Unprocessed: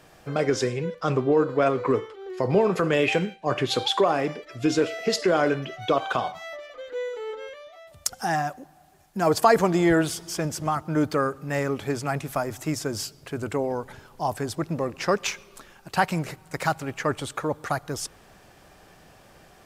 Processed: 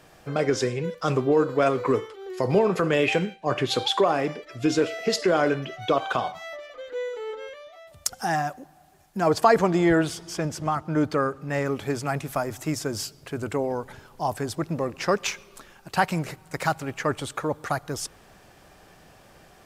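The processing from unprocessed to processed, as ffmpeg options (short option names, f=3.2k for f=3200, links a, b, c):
-filter_complex "[0:a]asettb=1/sr,asplit=3[a][b][c];[a]atrim=end=0.844[d];[b]atrim=start=0.84:end=2.59,asetpts=PTS-STARTPTS,afade=t=in:d=0.004:c=qsin,afade=t=out:st=1.746:d=0.004:c=qsin,highshelf=f=5.7k:g=10.5[e];[c]atrim=start=2.586[f];[d][e]acrossfade=d=0.004:c1=hsin:c2=qsin[g];[g][f]acrossfade=d=0.004:c1=qsin:c2=hsin,asettb=1/sr,asplit=3[h][i][j];[h]atrim=end=9.204[k];[i]atrim=start=9.2:end=11.66,asetpts=PTS-STARTPTS,afade=t=in:d=0.004:c=qsin,afade=t=out:st=2.456:d=0.004:c=qsin,highshelf=f=8.9k:g=-11[l];[j]atrim=start=11.656[m];[k][l]acrossfade=d=0.004:c1=hsin:c2=qsin[n];[n][m]acrossfade=d=0.004:c1=qsin:c2=hsin"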